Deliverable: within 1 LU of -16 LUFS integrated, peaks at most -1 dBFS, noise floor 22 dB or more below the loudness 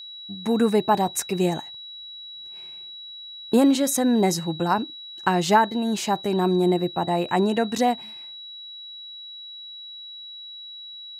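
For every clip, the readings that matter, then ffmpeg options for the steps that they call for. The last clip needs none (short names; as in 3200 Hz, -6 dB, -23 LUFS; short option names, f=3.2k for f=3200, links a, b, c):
steady tone 3900 Hz; tone level -37 dBFS; loudness -22.5 LUFS; peak -5.5 dBFS; loudness target -16.0 LUFS
-> -af "bandreject=f=3.9k:w=30"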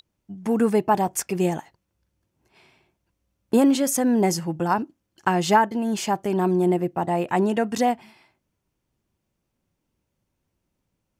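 steady tone none; loudness -22.5 LUFS; peak -5.5 dBFS; loudness target -16.0 LUFS
-> -af "volume=6.5dB,alimiter=limit=-1dB:level=0:latency=1"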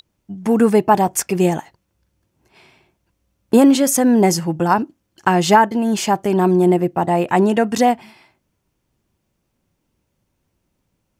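loudness -16.0 LUFS; peak -1.0 dBFS; noise floor -72 dBFS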